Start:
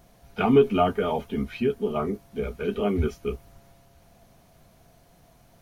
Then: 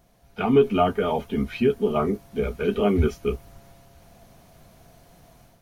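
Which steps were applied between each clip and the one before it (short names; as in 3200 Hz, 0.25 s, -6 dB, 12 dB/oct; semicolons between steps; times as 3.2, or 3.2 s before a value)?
AGC gain up to 9 dB; gain -4.5 dB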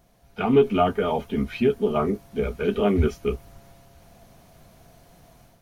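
Doppler distortion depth 0.12 ms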